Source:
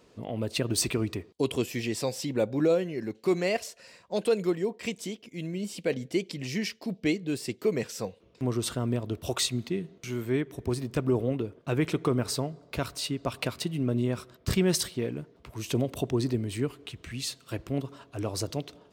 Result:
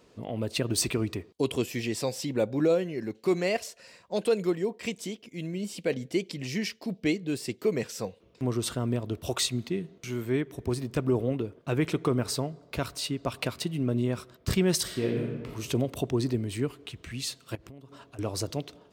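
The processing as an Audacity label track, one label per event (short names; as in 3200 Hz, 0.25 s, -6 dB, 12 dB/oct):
14.820000	15.520000	reverb throw, RT60 1.4 s, DRR -1.5 dB
17.550000	18.190000	compressor 10:1, threshold -43 dBFS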